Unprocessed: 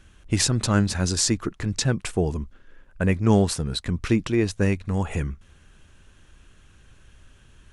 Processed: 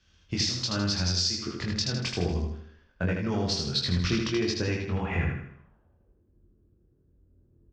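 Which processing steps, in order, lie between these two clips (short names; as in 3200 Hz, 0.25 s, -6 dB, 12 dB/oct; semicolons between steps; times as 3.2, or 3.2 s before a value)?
HPF 47 Hz; bell 5800 Hz +13.5 dB 1.3 oct; notch 4000 Hz, Q 13; de-hum 65.55 Hz, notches 35; compressor 10:1, threshold -24 dBFS, peak gain reduction 17 dB; low-pass sweep 4600 Hz -> 360 Hz, 4.66–6.25; soft clip -13.5 dBFS, distortion -21 dB; air absorption 100 m; doubler 23 ms -4 dB; feedback echo 79 ms, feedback 49%, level -3.5 dB; three-band expander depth 40%; gain -2 dB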